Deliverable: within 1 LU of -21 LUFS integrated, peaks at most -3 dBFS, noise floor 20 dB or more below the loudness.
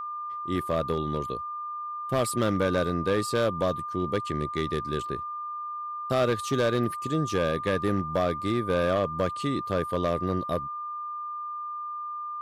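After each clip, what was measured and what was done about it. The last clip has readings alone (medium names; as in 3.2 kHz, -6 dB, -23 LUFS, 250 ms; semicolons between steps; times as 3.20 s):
clipped samples 0.9%; clipping level -18.0 dBFS; steady tone 1.2 kHz; tone level -32 dBFS; loudness -28.5 LUFS; peak level -18.0 dBFS; loudness target -21.0 LUFS
-> clip repair -18 dBFS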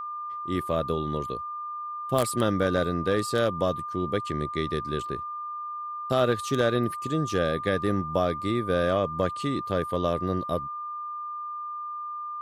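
clipped samples 0.0%; steady tone 1.2 kHz; tone level -32 dBFS
-> band-stop 1.2 kHz, Q 30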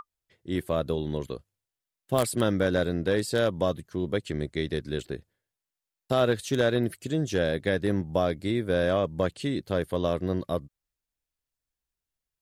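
steady tone not found; loudness -28.0 LUFS; peak level -9.0 dBFS; loudness target -21.0 LUFS
-> trim +7 dB; peak limiter -3 dBFS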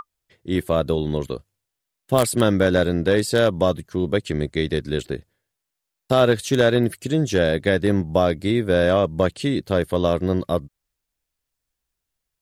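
loudness -21.0 LUFS; peak level -3.0 dBFS; noise floor -82 dBFS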